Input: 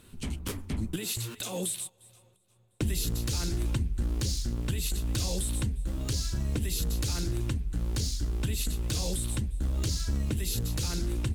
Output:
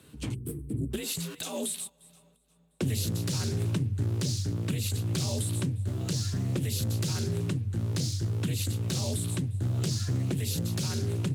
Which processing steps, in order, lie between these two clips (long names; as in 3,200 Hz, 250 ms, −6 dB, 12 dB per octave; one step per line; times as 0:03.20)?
gain on a spectral selection 0:00.34–0:00.91, 410–7,800 Hz −21 dB
frequency shifter +53 Hz
highs frequency-modulated by the lows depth 0.26 ms